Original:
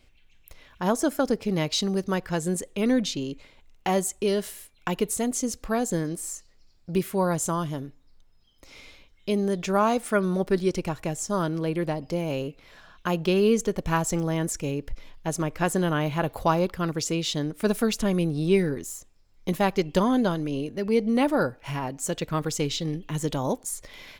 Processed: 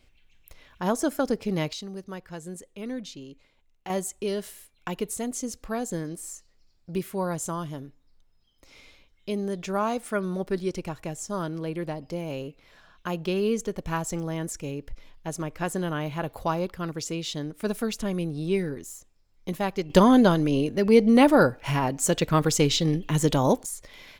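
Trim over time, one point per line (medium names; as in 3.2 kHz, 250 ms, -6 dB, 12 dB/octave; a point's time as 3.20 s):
-1.5 dB
from 1.73 s -11.5 dB
from 3.90 s -4.5 dB
from 19.90 s +5.5 dB
from 23.66 s -2.5 dB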